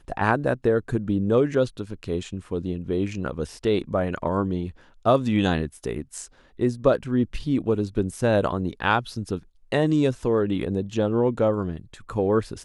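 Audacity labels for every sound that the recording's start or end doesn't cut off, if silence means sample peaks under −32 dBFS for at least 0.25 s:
5.050000	6.250000	sound
6.600000	9.390000	sound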